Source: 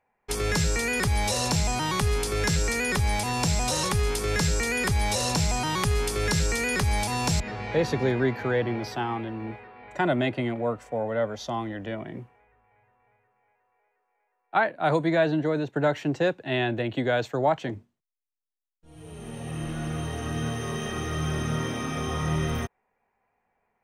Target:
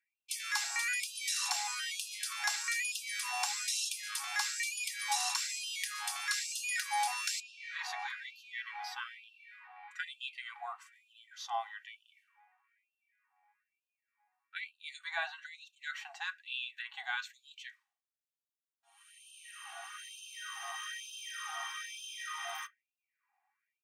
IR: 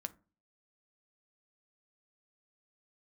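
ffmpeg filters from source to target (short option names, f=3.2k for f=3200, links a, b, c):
-filter_complex "[0:a]aecho=1:1:2.6:0.44[a];[1:a]atrim=start_sample=2205,asetrate=61740,aresample=44100[b];[a][b]afir=irnorm=-1:irlink=0,afftfilt=real='re*gte(b*sr/1024,670*pow(2500/670,0.5+0.5*sin(2*PI*1.1*pts/sr)))':imag='im*gte(b*sr/1024,670*pow(2500/670,0.5+0.5*sin(2*PI*1.1*pts/sr)))':win_size=1024:overlap=0.75"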